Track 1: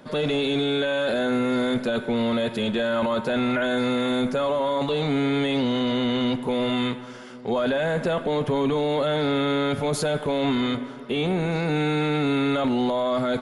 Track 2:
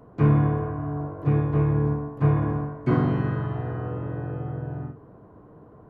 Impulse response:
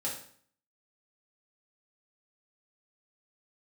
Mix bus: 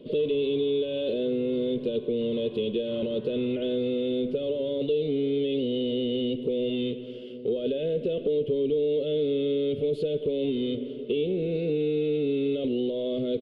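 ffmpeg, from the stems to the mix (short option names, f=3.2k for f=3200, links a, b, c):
-filter_complex "[0:a]firequalizer=gain_entry='entry(210,0);entry(450,12);entry(840,-28);entry(1700,-23);entry(2900,5);entry(6000,-25);entry(8900,-21)':delay=0.05:min_phase=1,volume=-2dB[a];[1:a]alimiter=limit=-18.5dB:level=0:latency=1,volume=-17.5dB[b];[a][b]amix=inputs=2:normalize=0,acompressor=threshold=-27dB:ratio=2.5"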